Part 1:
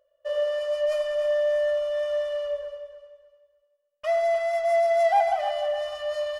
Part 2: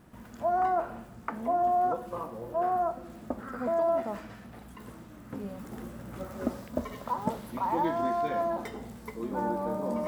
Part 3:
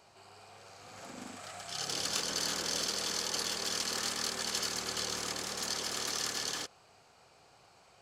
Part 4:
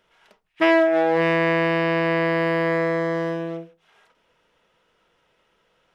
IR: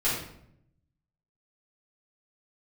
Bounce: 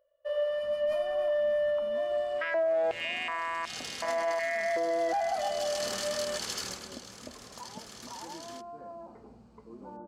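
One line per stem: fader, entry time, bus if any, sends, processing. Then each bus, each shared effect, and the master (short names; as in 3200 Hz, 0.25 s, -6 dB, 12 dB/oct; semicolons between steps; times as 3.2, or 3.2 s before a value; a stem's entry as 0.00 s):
-4.0 dB, 0.00 s, no send, bell 6600 Hz -10.5 dB 0.95 oct
-11.0 dB, 0.50 s, no send, compressor 2.5:1, threshold -32 dBFS, peak gain reduction 6.5 dB; LPF 1300 Hz 24 dB/oct
3.8 s -4 dB -> 4.25 s -11 dB -> 5.32 s -11 dB -> 5.81 s -0.5 dB -> 6.66 s -0.5 dB -> 6.95 s -12 dB, 1.95 s, no send, dry
-11.0 dB, 1.80 s, no send, comb 3.2 ms, depth 35%; stepped high-pass 2.7 Hz 430–3700 Hz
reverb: off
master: limiter -22.5 dBFS, peak gain reduction 11.5 dB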